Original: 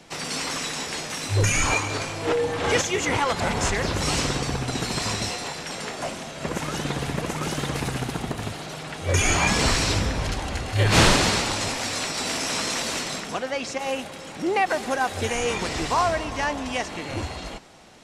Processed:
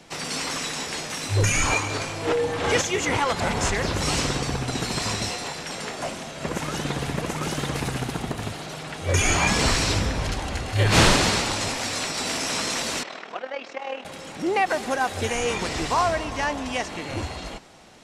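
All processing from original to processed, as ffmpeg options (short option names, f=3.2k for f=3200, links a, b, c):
-filter_complex "[0:a]asettb=1/sr,asplit=3[a][b][c];[a]atrim=end=13.034[d];[b]atrim=start=13.03:end=14.05,asetpts=PTS-STARTPTS,afade=t=in:d=0.004:c=qsin,afade=t=out:st=1.016:d=0.004:c=qsin,highpass=400,lowpass=2.9k,tremolo=f=39:d=0.667[e];[c]atrim=start=14.046[f];[d][e]acrossfade=d=0.004:c1=hsin:c2=qsin[g];[g][f]acrossfade=d=0.004:c1=qsin:c2=hsin"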